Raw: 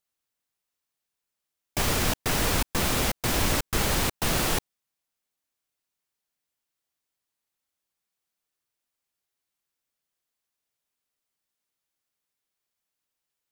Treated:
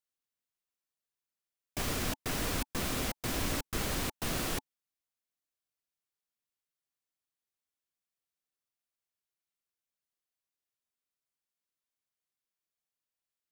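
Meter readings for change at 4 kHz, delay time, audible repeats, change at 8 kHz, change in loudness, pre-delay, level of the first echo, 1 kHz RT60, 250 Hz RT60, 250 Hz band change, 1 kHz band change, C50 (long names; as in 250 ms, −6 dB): −9.0 dB, no echo audible, no echo audible, −9.0 dB, −9.0 dB, no reverb audible, no echo audible, no reverb audible, no reverb audible, −6.5 dB, −9.5 dB, no reverb audible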